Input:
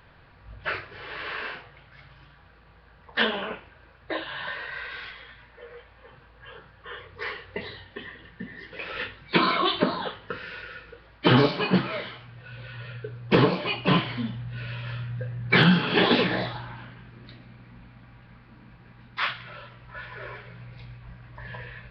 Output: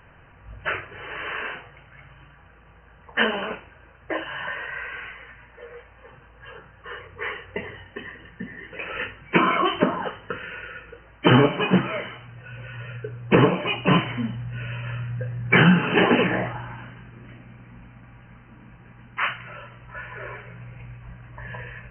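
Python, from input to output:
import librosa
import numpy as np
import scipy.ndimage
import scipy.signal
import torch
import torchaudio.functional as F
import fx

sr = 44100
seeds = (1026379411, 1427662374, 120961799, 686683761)

y = fx.brickwall_lowpass(x, sr, high_hz=3100.0)
y = F.gain(torch.from_numpy(y), 3.0).numpy()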